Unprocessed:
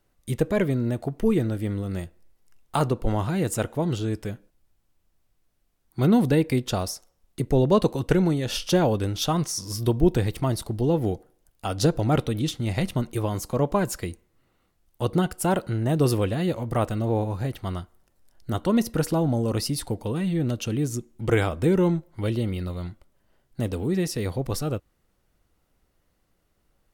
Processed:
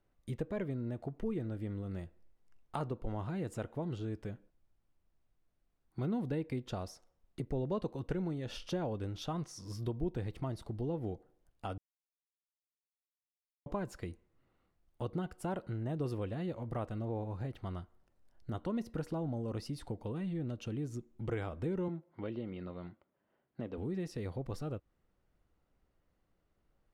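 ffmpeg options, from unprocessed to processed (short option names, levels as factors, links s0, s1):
-filter_complex "[0:a]asettb=1/sr,asplit=3[s0][s1][s2];[s0]atrim=end=21.884[s3];[s1]atrim=start=21.88:end=23.78,asetpts=PTS-STARTPTS,afade=t=in:d=0.004:c=qsin,afade=t=out:st=1.896:d=0.004:c=qsin,highpass=180,lowpass=3300[s4];[s2]atrim=start=23.776[s5];[s3][s4]acrossfade=d=0.004:c1=hsin:c2=qsin[s6];[s6][s5]acrossfade=d=0.004:c1=qsin:c2=hsin,asplit=3[s7][s8][s9];[s7]atrim=end=11.78,asetpts=PTS-STARTPTS,afade=t=out:st=11.776:d=0.004:c=hsin[s10];[s8]atrim=start=11.78:end=13.66,asetpts=PTS-STARTPTS,volume=0[s11];[s9]atrim=start=13.66,asetpts=PTS-STARTPTS,afade=t=in:d=0.004:c=hsin[s12];[s10][s11][s12]concat=n=3:v=0:a=1,acompressor=threshold=0.0224:ratio=2,aemphasis=mode=reproduction:type=75kf,volume=0.473"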